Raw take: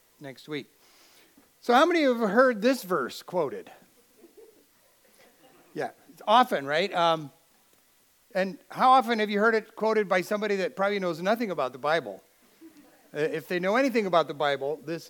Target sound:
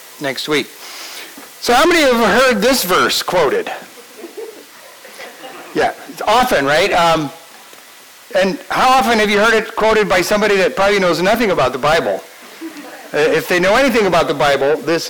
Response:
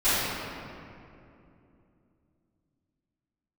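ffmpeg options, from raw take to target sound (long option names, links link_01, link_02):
-filter_complex "[0:a]asetnsamples=nb_out_samples=441:pad=0,asendcmd='3.56 lowpass f 3900',asplit=2[link_01][link_02];[link_02]highpass=frequency=720:poles=1,volume=33dB,asoftclip=type=tanh:threshold=-6.5dB[link_03];[link_01][link_03]amix=inputs=2:normalize=0,lowpass=frequency=8000:poles=1,volume=-6dB,volume=2dB"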